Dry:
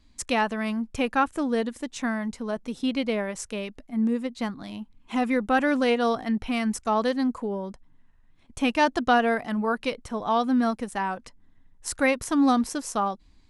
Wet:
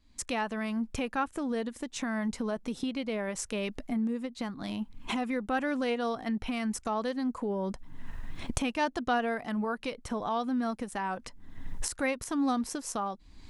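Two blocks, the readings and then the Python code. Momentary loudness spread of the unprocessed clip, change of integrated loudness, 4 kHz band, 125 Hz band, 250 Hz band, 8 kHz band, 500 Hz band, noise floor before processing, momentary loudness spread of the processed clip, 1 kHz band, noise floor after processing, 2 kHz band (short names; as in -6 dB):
11 LU, -7.0 dB, -5.5 dB, n/a, -6.0 dB, -2.0 dB, -7.0 dB, -57 dBFS, 8 LU, -7.5 dB, -56 dBFS, -7.0 dB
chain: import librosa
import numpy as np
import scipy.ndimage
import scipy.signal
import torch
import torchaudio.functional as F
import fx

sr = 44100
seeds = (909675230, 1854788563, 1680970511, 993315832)

y = fx.recorder_agc(x, sr, target_db=-17.0, rise_db_per_s=47.0, max_gain_db=30)
y = F.gain(torch.from_numpy(y), -8.0).numpy()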